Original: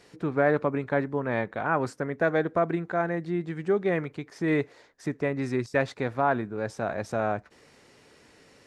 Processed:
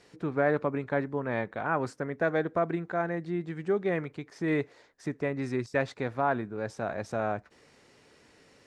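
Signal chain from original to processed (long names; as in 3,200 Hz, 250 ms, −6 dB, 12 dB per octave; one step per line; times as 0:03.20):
low-pass filter 11,000 Hz
level −3 dB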